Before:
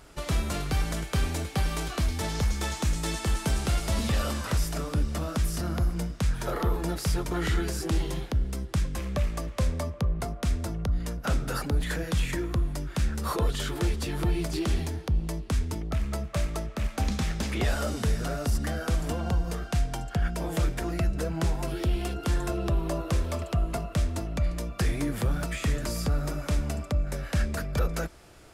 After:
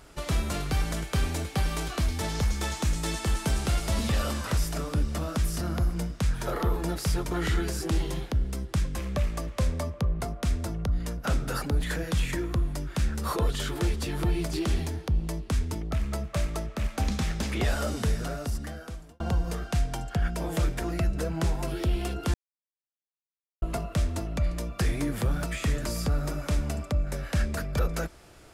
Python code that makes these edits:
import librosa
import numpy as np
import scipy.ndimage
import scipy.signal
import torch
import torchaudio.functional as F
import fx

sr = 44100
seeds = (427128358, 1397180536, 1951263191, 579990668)

y = fx.edit(x, sr, fx.fade_out_span(start_s=18.05, length_s=1.15),
    fx.silence(start_s=22.34, length_s=1.28), tone=tone)